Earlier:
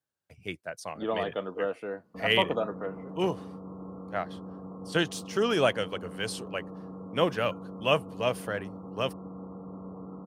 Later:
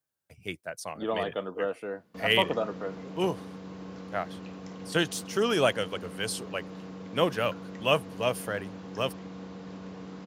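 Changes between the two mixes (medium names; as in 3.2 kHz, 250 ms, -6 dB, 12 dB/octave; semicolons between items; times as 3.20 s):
background: remove brick-wall FIR low-pass 1.4 kHz; master: add treble shelf 7.7 kHz +9 dB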